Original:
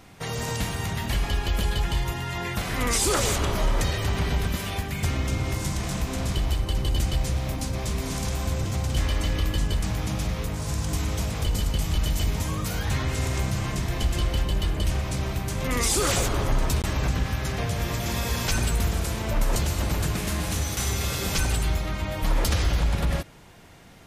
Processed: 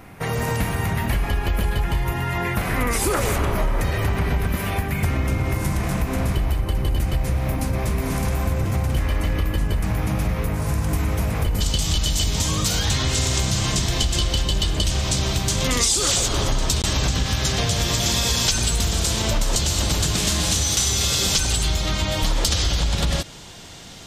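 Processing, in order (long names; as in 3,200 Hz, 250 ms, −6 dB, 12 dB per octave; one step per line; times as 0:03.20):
flat-topped bell 5,000 Hz −8.5 dB, from 0:11.60 +10 dB
downward compressor 6 to 1, threshold −24 dBFS, peak gain reduction 11 dB
level +7 dB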